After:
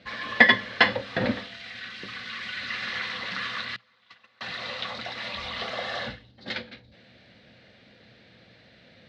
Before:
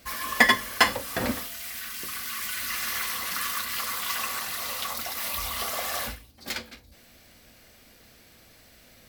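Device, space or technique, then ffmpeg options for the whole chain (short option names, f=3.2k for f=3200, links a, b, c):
guitar cabinet: -filter_complex "[0:a]asettb=1/sr,asplit=3[a][b][c];[a]atrim=end=3.764[d];[b]atrim=start=3.76:end=4.41,asetpts=PTS-STARTPTS,afade=t=in:d=0.004:c=qsin,afade=t=out:st=0.646:d=0.004:c=qsin,agate=range=-30dB:threshold=-25dB:ratio=16:detection=peak[e];[c]atrim=start=4.406[f];[d][e]acrossfade=d=0.004:c1=hsin:c2=qsin[g];[g][f]acrossfade=d=0.004:c1=qsin:c2=hsin,asettb=1/sr,asplit=3[h][i][j];[h]atrim=end=5.764[k];[i]atrim=start=5.76:end=6.55,asetpts=PTS-STARTPTS,afade=t=in:d=0.004:c=qsin,afade=t=out:st=0.786:d=0.004:c=qsin,bandreject=f=2.4k:w=8.8[l];[j]atrim=start=6.546[m];[k][l]acrossfade=d=0.004:c1=hsin:c2=qsin[n];[n][m]acrossfade=d=0.004:c1=qsin:c2=hsin,highpass=96,equalizer=f=120:t=q:w=4:g=9,equalizer=f=190:t=q:w=4:g=7,equalizer=f=520:t=q:w=4:g=5,equalizer=f=1.1k:t=q:w=4:g=-5,equalizer=f=1.8k:t=q:w=4:g=4,equalizer=f=3.9k:t=q:w=4:g=6,lowpass=f=3.9k:w=0.5412,lowpass=f=3.9k:w=1.3066"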